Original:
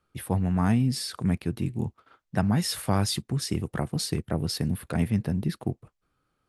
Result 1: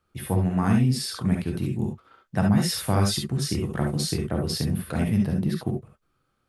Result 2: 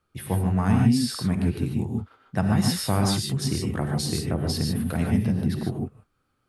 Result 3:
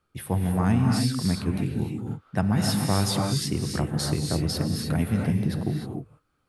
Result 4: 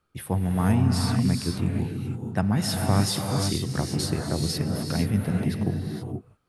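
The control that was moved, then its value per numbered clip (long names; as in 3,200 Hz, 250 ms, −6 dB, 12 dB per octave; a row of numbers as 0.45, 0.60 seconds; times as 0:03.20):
reverb whose tail is shaped and stops, gate: 90, 170, 330, 500 milliseconds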